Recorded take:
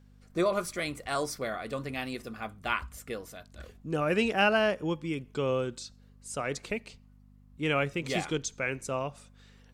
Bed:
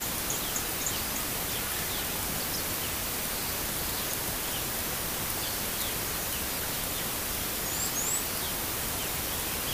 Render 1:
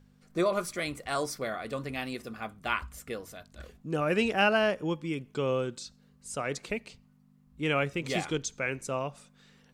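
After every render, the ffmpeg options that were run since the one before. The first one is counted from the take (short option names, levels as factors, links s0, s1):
-af "bandreject=f=50:t=h:w=4,bandreject=f=100:t=h:w=4"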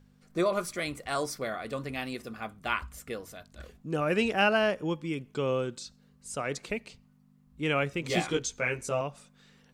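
-filter_complex "[0:a]asettb=1/sr,asplit=3[s0][s1][s2];[s0]atrim=end=8.084[s3];[s1]atrim=start=8.08:end=9.01,asetpts=PTS-STARTPTS,afade=t=in:d=0.004:c=qsin,afade=t=out:st=0.926:d=0.004:c=qsin,asplit=2[s4][s5];[s5]adelay=17,volume=0.794[s6];[s4][s6]amix=inputs=2:normalize=0,atrim=end_sample=41013[s7];[s2]atrim=start=9.006[s8];[s3][s7]acrossfade=d=0.004:c1=hsin:c2=qsin[s9];[s9][s8]acrossfade=d=0.004:c1=qsin:c2=hsin"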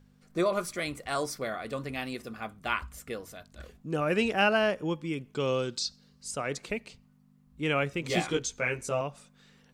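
-filter_complex "[0:a]asettb=1/sr,asplit=3[s0][s1][s2];[s0]atrim=end=5.404[s3];[s1]atrim=start=5.4:end=6.31,asetpts=PTS-STARTPTS,afade=t=in:d=0.004:c=qsin,afade=t=out:st=0.906:d=0.004:c=qsin,equalizer=f=4800:w=1.4:g=14[s4];[s2]atrim=start=6.306[s5];[s3][s4]acrossfade=d=0.004:c1=hsin:c2=qsin[s6];[s6][s5]acrossfade=d=0.004:c1=qsin:c2=hsin"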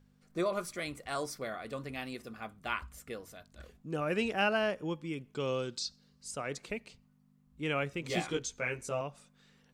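-af "volume=0.562"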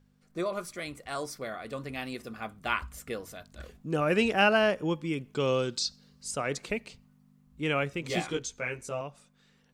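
-af "dynaudnorm=f=200:g=21:m=2.11"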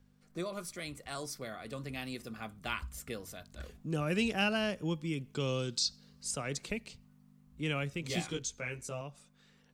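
-filter_complex "[0:a]acrossover=split=230|3000[s0][s1][s2];[s1]acompressor=threshold=0.00224:ratio=1.5[s3];[s0][s3][s2]amix=inputs=3:normalize=0"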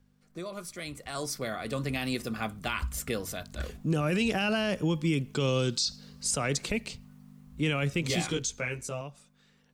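-af "alimiter=level_in=1.78:limit=0.0631:level=0:latency=1:release=35,volume=0.562,dynaudnorm=f=140:g=17:m=3.16"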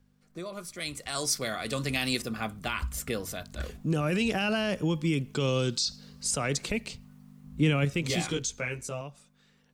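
-filter_complex "[0:a]asettb=1/sr,asplit=3[s0][s1][s2];[s0]atrim=end=0.804[s3];[s1]atrim=start=0.8:end=2.22,asetpts=PTS-STARTPTS,afade=t=in:d=0.004:c=qsin,afade=t=out:st=1.416:d=0.004:c=qsin,equalizer=f=6400:t=o:w=2.8:g=8.5[s4];[s2]atrim=start=2.216[s5];[s3][s4]acrossfade=d=0.004:c1=hsin:c2=qsin[s6];[s6][s5]acrossfade=d=0.004:c1=qsin:c2=hsin,asettb=1/sr,asplit=3[s7][s8][s9];[s7]atrim=end=7.444[s10];[s8]atrim=start=7.44:end=7.85,asetpts=PTS-STARTPTS,afade=t=in:d=0.004:c=qsin,afade=t=out:st=0.406:d=0.004:c=qsin,equalizer=f=180:w=0.5:g=6[s11];[s9]atrim=start=7.846[s12];[s10][s11]acrossfade=d=0.004:c1=hsin:c2=qsin[s13];[s13][s12]acrossfade=d=0.004:c1=qsin:c2=hsin"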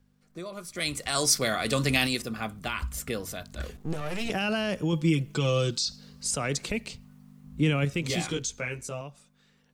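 -filter_complex "[0:a]asettb=1/sr,asplit=3[s0][s1][s2];[s0]atrim=end=3.764[s3];[s1]atrim=start=3.76:end=4.3,asetpts=PTS-STARTPTS,afade=t=in:d=0.004:c=qsin,afade=t=out:st=0.536:d=0.004:c=qsin,aeval=exprs='max(val(0),0)':c=same[s4];[s2]atrim=start=4.296[s5];[s3][s4]acrossfade=d=0.004:c1=hsin:c2=qsin[s6];[s6][s5]acrossfade=d=0.004:c1=qsin:c2=hsin,asettb=1/sr,asplit=3[s7][s8][s9];[s7]atrim=end=4.924[s10];[s8]atrim=start=4.92:end=5.71,asetpts=PTS-STARTPTS,afade=t=in:d=0.004:c=qsin,afade=t=out:st=0.786:d=0.004:c=qsin,aecho=1:1:6.1:0.65,atrim=end_sample=34839[s11];[s9]atrim=start=5.706[s12];[s10][s11]acrossfade=d=0.004:c1=hsin:c2=qsin[s13];[s13][s12]acrossfade=d=0.004:c1=qsin:c2=hsin,asplit=3[s14][s15][s16];[s14]atrim=end=0.752[s17];[s15]atrim=start=0.748:end=2.072,asetpts=PTS-STARTPTS,volume=1.88[s18];[s16]atrim=start=2.068[s19];[s17][s18]acrossfade=d=0.004:c1=hsin:c2=hsin[s20];[s20][s19]acrossfade=d=0.004:c1=hsin:c2=hsin"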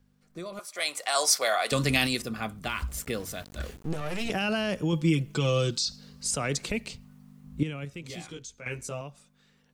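-filter_complex "[0:a]asettb=1/sr,asplit=3[s0][s1][s2];[s0]atrim=end=0.594[s3];[s1]atrim=start=0.59:end=1.72,asetpts=PTS-STARTPTS,afade=t=in:d=0.004:c=qsin,afade=t=out:st=1.126:d=0.004:c=qsin,highpass=f=690:t=q:w=1.9[s4];[s2]atrim=start=1.716[s5];[s3][s4]acrossfade=d=0.004:c1=hsin:c2=qsin[s6];[s6][s5]acrossfade=d=0.004:c1=qsin:c2=hsin,asettb=1/sr,asplit=3[s7][s8][s9];[s7]atrim=end=2.694[s10];[s8]atrim=start=2.69:end=3.89,asetpts=PTS-STARTPTS,afade=t=in:d=0.004:c=qsin,afade=t=out:st=1.196:d=0.004:c=qsin,aeval=exprs='val(0)*gte(abs(val(0)),0.00501)':c=same[s11];[s9]atrim=start=3.886[s12];[s10][s11]acrossfade=d=0.004:c1=hsin:c2=qsin[s13];[s13][s12]acrossfade=d=0.004:c1=qsin:c2=hsin,asplit=3[s14][s15][s16];[s14]atrim=end=7.632[s17];[s15]atrim=start=7.628:end=8.662,asetpts=PTS-STARTPTS,volume=0.282[s18];[s16]atrim=start=8.658[s19];[s17][s18]acrossfade=d=0.004:c1=hsin:c2=hsin[s20];[s20][s19]acrossfade=d=0.004:c1=hsin:c2=hsin"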